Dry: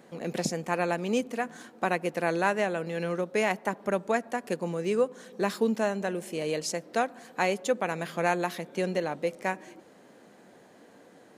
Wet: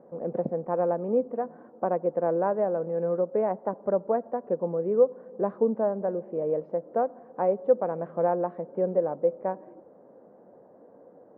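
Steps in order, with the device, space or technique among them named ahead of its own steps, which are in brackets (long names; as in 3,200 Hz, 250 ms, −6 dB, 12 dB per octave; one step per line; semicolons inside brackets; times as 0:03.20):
under water (low-pass filter 1,100 Hz 24 dB per octave; parametric band 530 Hz +8.5 dB 0.6 octaves)
level −2 dB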